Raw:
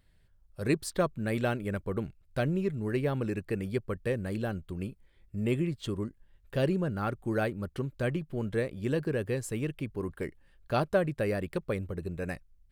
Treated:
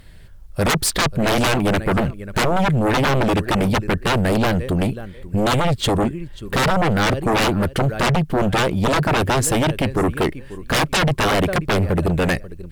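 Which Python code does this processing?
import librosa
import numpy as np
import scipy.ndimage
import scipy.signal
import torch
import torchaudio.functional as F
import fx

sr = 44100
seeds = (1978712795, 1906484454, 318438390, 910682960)

y = fx.echo_feedback(x, sr, ms=538, feedback_pct=18, wet_db=-22.0)
y = fx.fold_sine(y, sr, drive_db=18, ceiling_db=-14.0)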